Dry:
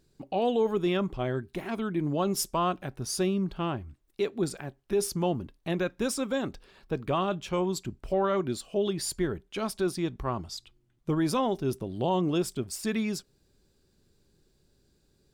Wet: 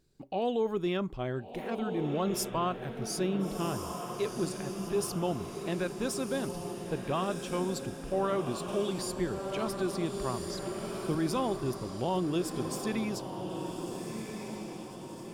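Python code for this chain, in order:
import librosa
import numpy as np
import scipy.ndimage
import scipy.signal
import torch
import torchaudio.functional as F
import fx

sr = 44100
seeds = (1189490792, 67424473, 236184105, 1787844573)

y = fx.echo_diffused(x, sr, ms=1411, feedback_pct=53, wet_db=-6.0)
y = fx.band_squash(y, sr, depth_pct=40, at=(8.68, 11.15))
y = y * librosa.db_to_amplitude(-4.0)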